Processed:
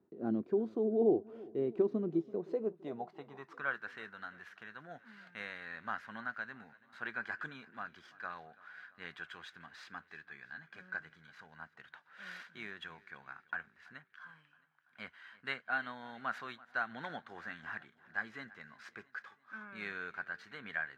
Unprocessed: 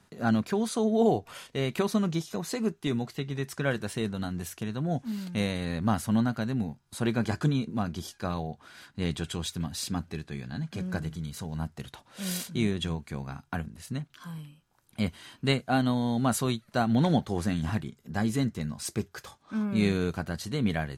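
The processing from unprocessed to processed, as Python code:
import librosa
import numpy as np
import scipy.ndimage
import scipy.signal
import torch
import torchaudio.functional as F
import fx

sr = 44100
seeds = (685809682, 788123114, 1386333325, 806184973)

y = scipy.ndimage.median_filter(x, 5, mode='constant')
y = fx.filter_sweep_bandpass(y, sr, from_hz=350.0, to_hz=1600.0, start_s=2.24, end_s=3.9, q=4.0)
y = fx.echo_feedback(y, sr, ms=334, feedback_pct=58, wet_db=-21.5)
y = F.gain(torch.from_numpy(y), 2.5).numpy()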